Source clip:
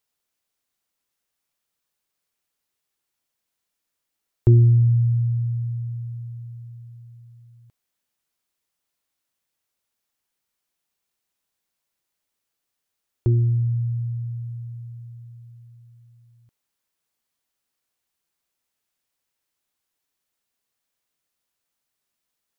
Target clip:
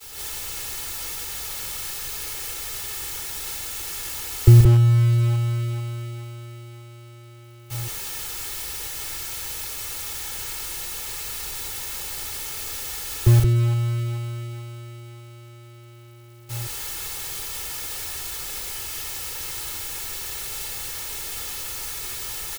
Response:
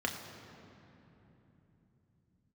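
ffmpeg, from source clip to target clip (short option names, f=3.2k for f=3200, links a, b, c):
-filter_complex "[0:a]aeval=exprs='val(0)+0.5*0.0596*sgn(val(0))':c=same,equalizer=f=360:w=0.36:g=-4,aecho=1:1:2.3:0.63,asplit=2[a][b];[b]aecho=0:1:131.2|174.9:0.447|0.794[c];[a][c]amix=inputs=2:normalize=0,agate=range=-33dB:threshold=-23dB:ratio=3:detection=peak,lowshelf=f=170:g=8.5,acrossover=split=150|180[d][e][f];[e]acrusher=bits=2:mode=log:mix=0:aa=0.000001[g];[d][g][f]amix=inputs=3:normalize=0,volume=-1.5dB"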